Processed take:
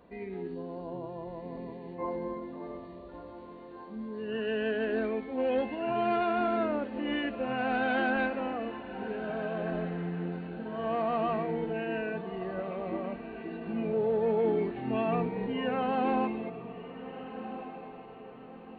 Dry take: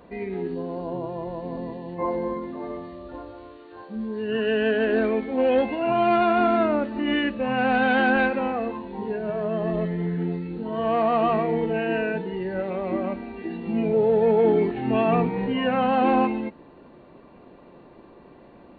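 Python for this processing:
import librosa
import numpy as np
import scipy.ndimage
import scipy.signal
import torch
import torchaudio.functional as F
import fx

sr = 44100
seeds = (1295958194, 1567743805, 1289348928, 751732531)

y = fx.echo_diffused(x, sr, ms=1508, feedback_pct=41, wet_db=-12)
y = y * librosa.db_to_amplitude(-8.5)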